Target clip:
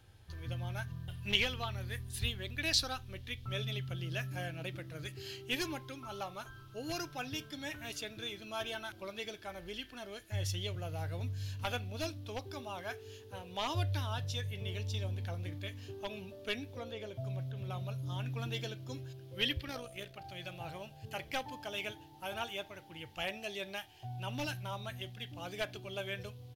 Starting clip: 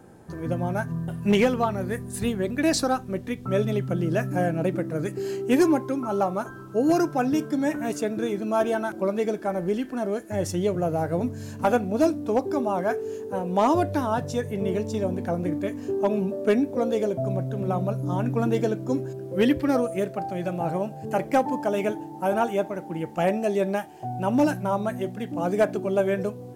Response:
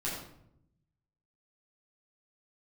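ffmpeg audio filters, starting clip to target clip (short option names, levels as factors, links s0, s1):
-filter_complex "[0:a]firequalizer=gain_entry='entry(100,0);entry(170,-23);entry(3200,5);entry(8000,-13);entry(11000,-6)':delay=0.05:min_phase=1,asettb=1/sr,asplit=3[s0][s1][s2];[s0]atrim=end=16.734[s3];[s1]atrim=start=16.73:end=17.7,asetpts=PTS-STARTPTS,afade=t=in:d=0.004:c=qsin,afade=t=out:st=0.966:d=0.004:c=qsin,acrossover=split=2500[s4][s5];[s5]acompressor=threshold=0.00112:ratio=4:attack=1:release=60[s6];[s4][s6]amix=inputs=2:normalize=0[s7];[s2]atrim=start=17.696[s8];[s3][s7]acrossfade=d=0.004:c1=hsin:c2=qsin[s9];[s9][s8]acrossfade=d=0.004:c1=qsin:c2=hsin,asplit=3[s10][s11][s12];[s10]afade=t=out:st=19.58:d=0.02[s13];[s11]tremolo=f=60:d=0.519,afade=t=in:st=19.58:d=0.02,afade=t=out:st=20.24:d=0.02[s14];[s12]afade=t=in:st=20.24:d=0.02[s15];[s13][s14][s15]amix=inputs=3:normalize=0"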